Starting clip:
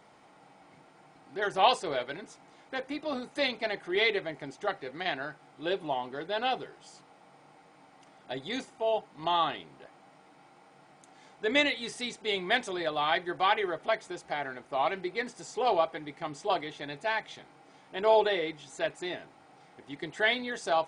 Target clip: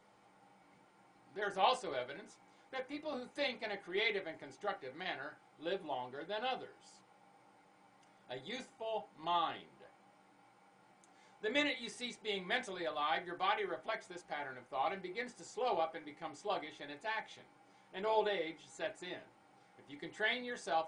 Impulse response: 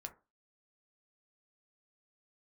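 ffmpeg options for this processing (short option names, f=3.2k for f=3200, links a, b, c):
-filter_complex "[0:a]equalizer=f=7.9k:w=1.5:g=2[a];[1:a]atrim=start_sample=2205,asetrate=70560,aresample=44100[b];[a][b]afir=irnorm=-1:irlink=0"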